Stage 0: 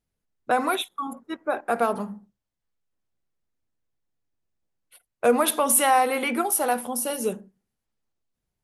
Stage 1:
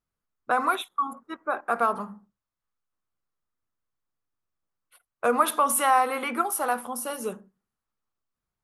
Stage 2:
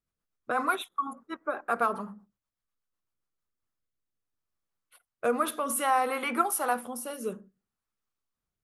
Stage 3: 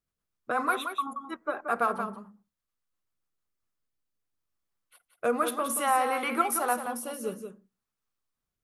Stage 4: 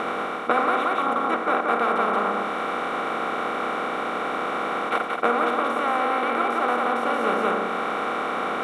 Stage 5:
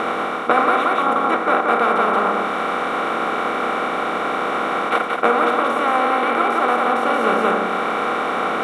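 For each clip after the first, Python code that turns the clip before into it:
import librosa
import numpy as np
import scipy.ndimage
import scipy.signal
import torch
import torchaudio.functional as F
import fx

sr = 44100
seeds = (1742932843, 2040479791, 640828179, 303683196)

y1 = fx.peak_eq(x, sr, hz=1200.0, db=12.0, octaves=0.77)
y1 = y1 * librosa.db_to_amplitude(-6.0)
y2 = fx.rotary_switch(y1, sr, hz=8.0, then_hz=0.6, switch_at_s=3.0)
y3 = y2 + 10.0 ** (-8.0 / 20.0) * np.pad(y2, (int(178 * sr / 1000.0), 0))[:len(y2)]
y4 = fx.bin_compress(y3, sr, power=0.2)
y4 = fx.rider(y4, sr, range_db=5, speed_s=0.5)
y4 = fx.air_absorb(y4, sr, metres=170.0)
y5 = fx.doubler(y4, sr, ms=27.0, db=-12.0)
y5 = y5 * librosa.db_to_amplitude(5.0)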